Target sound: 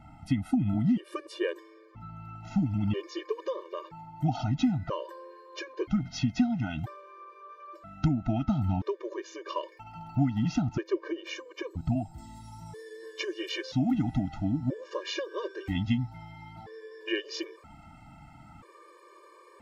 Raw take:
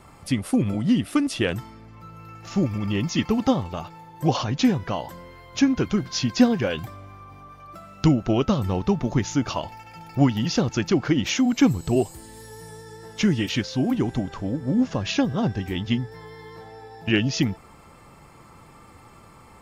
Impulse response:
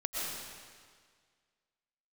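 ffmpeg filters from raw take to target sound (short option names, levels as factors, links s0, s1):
-af "asetnsamples=n=441:p=0,asendcmd='10.62 lowpass f 1000;12.18 lowpass f 3500',lowpass=f=1700:p=1,acompressor=threshold=0.0794:ratio=4,afftfilt=real='re*gt(sin(2*PI*0.51*pts/sr)*(1-2*mod(floor(b*sr/1024/310),2)),0)':imag='im*gt(sin(2*PI*0.51*pts/sr)*(1-2*mod(floor(b*sr/1024/310),2)),0)':win_size=1024:overlap=0.75"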